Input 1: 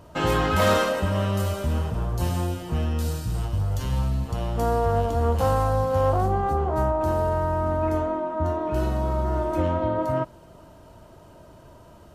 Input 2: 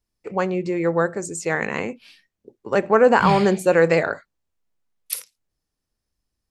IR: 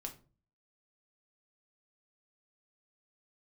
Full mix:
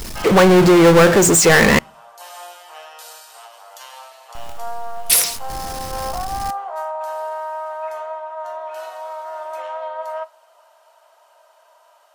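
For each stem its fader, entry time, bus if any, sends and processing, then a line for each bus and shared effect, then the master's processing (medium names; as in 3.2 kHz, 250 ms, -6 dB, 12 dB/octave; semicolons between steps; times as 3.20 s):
-1.5 dB, 0.00 s, send -7 dB, steep high-pass 640 Hz 36 dB/octave; auto duck -13 dB, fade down 0.70 s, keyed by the second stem
+0.5 dB, 0.00 s, muted 1.79–4.35 s, send -24 dB, power-law waveshaper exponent 0.35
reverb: on, RT60 0.35 s, pre-delay 5 ms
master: none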